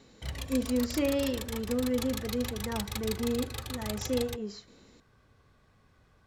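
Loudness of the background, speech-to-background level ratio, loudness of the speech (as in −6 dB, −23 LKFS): −38.0 LKFS, 5.0 dB, −33.0 LKFS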